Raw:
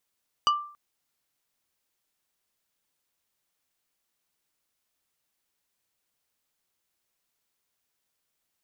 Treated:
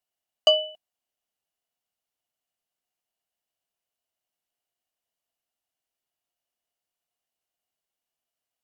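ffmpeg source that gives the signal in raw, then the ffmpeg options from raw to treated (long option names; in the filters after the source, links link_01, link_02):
-f lavfi -i "aevalsrc='0.15*pow(10,-3*t/0.48)*sin(2*PI*1180*t)+0.0794*pow(10,-3*t/0.16)*sin(2*PI*2950*t)+0.0422*pow(10,-3*t/0.091)*sin(2*PI*4720*t)+0.0224*pow(10,-3*t/0.07)*sin(2*PI*5900*t)+0.0119*pow(10,-3*t/0.051)*sin(2*PI*7670*t)':duration=0.28:sample_rate=44100"
-af "agate=range=-7dB:threshold=-49dB:ratio=16:detection=peak,equalizer=frequency=1100:width_type=o:width=0.32:gain=14.5,aeval=exprs='val(0)*sin(2*PI*1800*n/s)':channel_layout=same"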